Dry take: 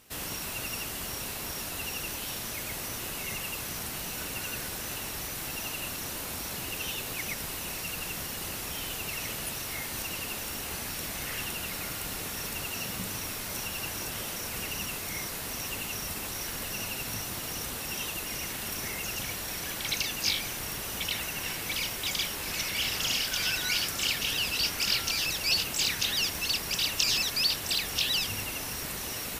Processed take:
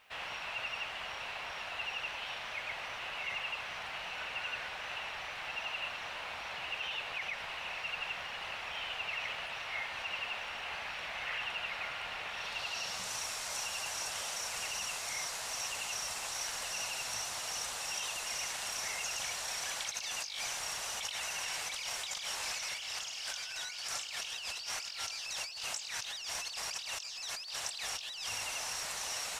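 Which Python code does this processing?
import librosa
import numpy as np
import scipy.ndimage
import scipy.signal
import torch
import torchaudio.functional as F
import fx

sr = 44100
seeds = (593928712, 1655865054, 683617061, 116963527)

y = fx.low_shelf_res(x, sr, hz=470.0, db=-13.5, q=1.5)
y = fx.over_compress(y, sr, threshold_db=-35.0, ratio=-1.0)
y = fx.filter_sweep_lowpass(y, sr, from_hz=2700.0, to_hz=7300.0, start_s=12.27, end_s=13.14, q=1.6)
y = fx.quant_dither(y, sr, seeds[0], bits=12, dither='triangular')
y = F.gain(torch.from_numpy(y), -4.5).numpy()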